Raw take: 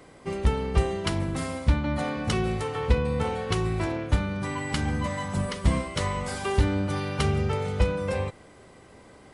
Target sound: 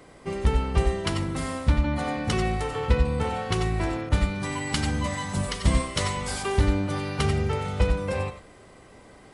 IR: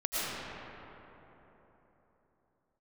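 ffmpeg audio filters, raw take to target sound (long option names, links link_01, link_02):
-filter_complex "[1:a]atrim=start_sample=2205,atrim=end_sample=4410[link_01];[0:a][link_01]afir=irnorm=-1:irlink=0,asettb=1/sr,asplit=3[link_02][link_03][link_04];[link_02]atrim=end=4.094[link_05];[link_03]atrim=start=4.09:end=6.43,asetpts=PTS-STARTPTS,afade=type=in:duration=0.004:curve=qsin,afade=type=out:start_time=2.336:duration=0.004:curve=qsin,adynamicequalizer=threshold=0.00501:dfrequency=2500:dqfactor=0.7:tfrequency=2500:tqfactor=0.7:attack=5:release=100:ratio=0.375:range=2.5:mode=boostabove:tftype=highshelf[link_06];[link_04]atrim=start=6.426[link_07];[link_05][link_06]acrossfade=duration=0.004:curve1=hsin:curve2=qsin[link_08];[link_08][link_07]acrossfade=duration=0.004:curve1=qsin:curve2=hsin,volume=1.5dB"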